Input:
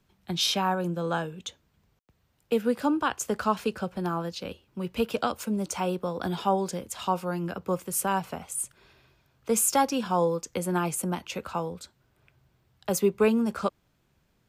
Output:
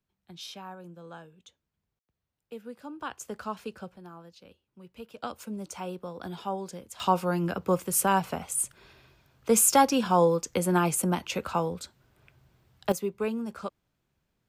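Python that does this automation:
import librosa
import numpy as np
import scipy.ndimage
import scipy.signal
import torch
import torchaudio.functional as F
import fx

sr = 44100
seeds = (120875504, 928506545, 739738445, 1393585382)

y = fx.gain(x, sr, db=fx.steps((0.0, -16.5), (3.0, -9.5), (3.96, -17.0), (5.23, -8.0), (7.0, 3.0), (12.92, -8.0)))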